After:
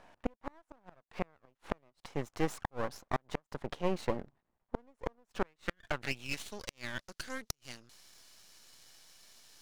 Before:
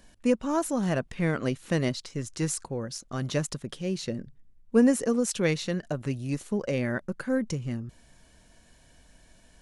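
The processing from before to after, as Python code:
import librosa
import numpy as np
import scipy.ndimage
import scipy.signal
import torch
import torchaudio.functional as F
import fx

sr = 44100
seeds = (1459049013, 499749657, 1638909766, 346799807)

y = fx.filter_sweep_bandpass(x, sr, from_hz=840.0, to_hz=4900.0, start_s=5.31, end_s=6.68, q=2.1)
y = np.maximum(y, 0.0)
y = fx.gate_flip(y, sr, shuts_db=-30.0, range_db=-40)
y = y * 10.0 ** (14.5 / 20.0)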